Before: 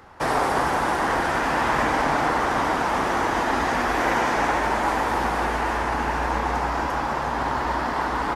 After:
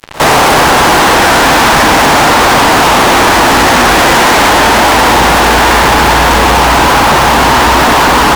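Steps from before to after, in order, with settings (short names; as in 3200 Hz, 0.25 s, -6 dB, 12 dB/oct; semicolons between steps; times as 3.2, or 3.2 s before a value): fuzz box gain 42 dB, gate -41 dBFS; reverse echo 59 ms -20 dB; gain +8 dB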